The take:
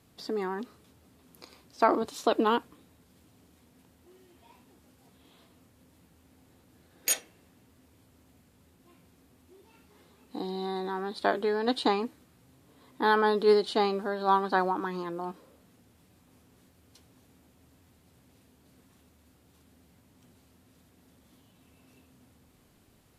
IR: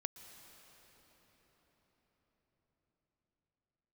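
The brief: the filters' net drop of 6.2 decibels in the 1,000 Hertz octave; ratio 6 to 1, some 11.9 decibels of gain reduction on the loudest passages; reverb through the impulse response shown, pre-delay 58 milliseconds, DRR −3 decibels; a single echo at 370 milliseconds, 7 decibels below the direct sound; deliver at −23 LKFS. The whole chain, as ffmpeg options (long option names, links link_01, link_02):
-filter_complex "[0:a]equalizer=frequency=1000:width_type=o:gain=-8,acompressor=threshold=-31dB:ratio=6,aecho=1:1:370:0.447,asplit=2[link_01][link_02];[1:a]atrim=start_sample=2205,adelay=58[link_03];[link_02][link_03]afir=irnorm=-1:irlink=0,volume=5dB[link_04];[link_01][link_04]amix=inputs=2:normalize=0,volume=10dB"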